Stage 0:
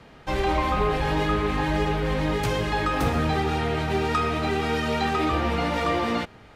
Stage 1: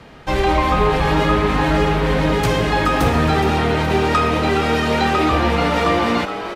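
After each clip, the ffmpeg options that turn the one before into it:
-filter_complex "[0:a]asplit=7[a][b][c][d][e][f][g];[b]adelay=419,afreqshift=120,volume=-10.5dB[h];[c]adelay=838,afreqshift=240,volume=-16.2dB[i];[d]adelay=1257,afreqshift=360,volume=-21.9dB[j];[e]adelay=1676,afreqshift=480,volume=-27.5dB[k];[f]adelay=2095,afreqshift=600,volume=-33.2dB[l];[g]adelay=2514,afreqshift=720,volume=-38.9dB[m];[a][h][i][j][k][l][m]amix=inputs=7:normalize=0,volume=7dB"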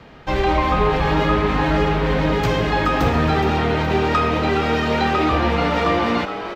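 -af "equalizer=f=10k:w=1.3:g=-14.5,volume=-1.5dB"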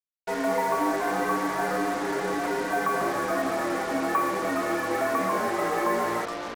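-af "highpass=f=410:t=q:w=0.5412,highpass=f=410:t=q:w=1.307,lowpass=f=2.2k:t=q:w=0.5176,lowpass=f=2.2k:t=q:w=0.7071,lowpass=f=2.2k:t=q:w=1.932,afreqshift=-120,acrusher=bits=4:mix=0:aa=0.5,volume=-5dB"

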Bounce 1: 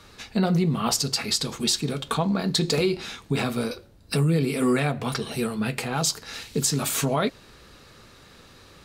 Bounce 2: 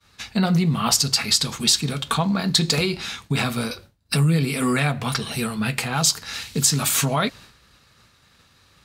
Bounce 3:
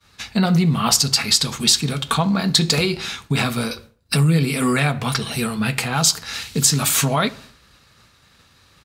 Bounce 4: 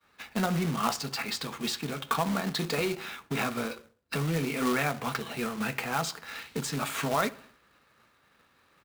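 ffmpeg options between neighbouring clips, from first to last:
-af "highpass=50,agate=range=-33dB:threshold=-42dB:ratio=3:detection=peak,equalizer=f=400:t=o:w=1.6:g=-9.5,volume=6dB"
-filter_complex "[0:a]asplit=2[a][b];[b]adelay=66,lowpass=f=2.1k:p=1,volume=-19dB,asplit=2[c][d];[d]adelay=66,lowpass=f=2.1k:p=1,volume=0.49,asplit=2[e][f];[f]adelay=66,lowpass=f=2.1k:p=1,volume=0.49,asplit=2[g][h];[h]adelay=66,lowpass=f=2.1k:p=1,volume=0.49[i];[a][c][e][g][i]amix=inputs=5:normalize=0,volume=2.5dB"
-filter_complex "[0:a]acrossover=split=220 2700:gain=0.224 1 0.158[a][b][c];[a][b][c]amix=inputs=3:normalize=0,bandreject=f=50:t=h:w=6,bandreject=f=100:t=h:w=6,acrusher=bits=2:mode=log:mix=0:aa=0.000001,volume=-6.5dB"

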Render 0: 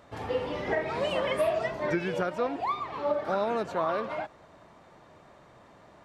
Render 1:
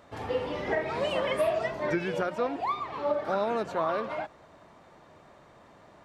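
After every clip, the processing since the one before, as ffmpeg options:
-af "bandreject=f=60:t=h:w=6,bandreject=f=120:t=h:w=6,bandreject=f=180:t=h:w=6"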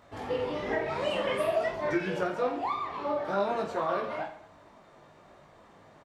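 -af "flanger=delay=0.8:depth=7.7:regen=-39:speed=1.1:shape=triangular,aecho=1:1:20|48|87.2|142.1|218.9:0.631|0.398|0.251|0.158|0.1,volume=1dB"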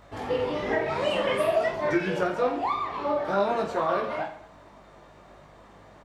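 -af "aeval=exprs='val(0)+0.000708*(sin(2*PI*50*n/s)+sin(2*PI*2*50*n/s)/2+sin(2*PI*3*50*n/s)/3+sin(2*PI*4*50*n/s)/4+sin(2*PI*5*50*n/s)/5)':c=same,volume=4dB"

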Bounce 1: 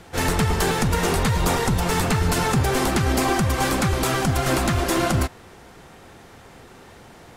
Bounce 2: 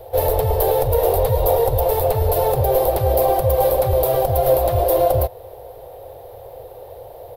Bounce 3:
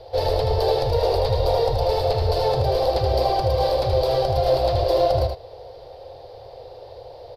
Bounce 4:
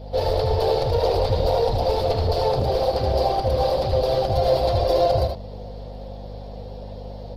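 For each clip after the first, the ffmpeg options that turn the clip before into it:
-filter_complex "[0:a]firequalizer=gain_entry='entry(120,0);entry(180,-28);entry(510,14);entry(1300,-16);entry(2200,-15);entry(3800,-8);entry(6800,-21);entry(13000,12)':delay=0.05:min_phase=1,asplit=2[a][b];[b]alimiter=limit=-15dB:level=0:latency=1:release=232,volume=3dB[c];[a][c]amix=inputs=2:normalize=0,volume=-3dB"
-af "lowpass=f=4.7k:t=q:w=6.8,aecho=1:1:78:0.531,volume=-4dB"
-af "aeval=exprs='val(0)+0.0178*(sin(2*PI*50*n/s)+sin(2*PI*2*50*n/s)/2+sin(2*PI*3*50*n/s)/3+sin(2*PI*4*50*n/s)/4+sin(2*PI*5*50*n/s)/5)':c=same" -ar 48000 -c:a libopus -b:a 16k

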